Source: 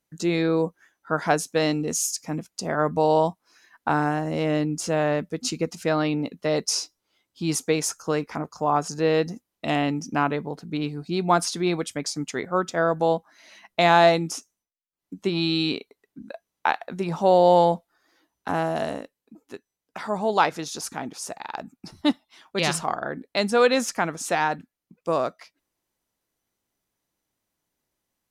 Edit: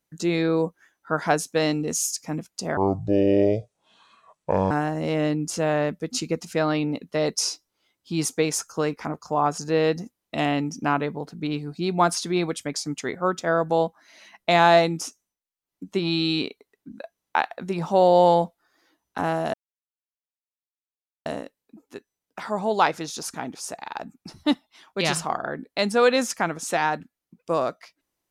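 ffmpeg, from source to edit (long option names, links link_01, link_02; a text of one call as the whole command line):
ffmpeg -i in.wav -filter_complex "[0:a]asplit=4[link_01][link_02][link_03][link_04];[link_01]atrim=end=2.774[link_05];[link_02]atrim=start=2.77:end=4.01,asetpts=PTS-STARTPTS,asetrate=28224,aresample=44100[link_06];[link_03]atrim=start=4.006:end=18.84,asetpts=PTS-STARTPTS,afade=type=out:start_time=14.83:duration=0.004:curve=hsin,apad=pad_dur=1.72[link_07];[link_04]atrim=start=18.84,asetpts=PTS-STARTPTS,afade=type=in:duration=0.004:curve=hsin[link_08];[link_05][link_06]acrossfade=duration=0.004:curve1=hsin:curve2=hsin[link_09];[link_07][link_08]concat=n=2:v=0:a=1[link_10];[link_09][link_10]acrossfade=duration=0.004:curve1=hsin:curve2=hsin" out.wav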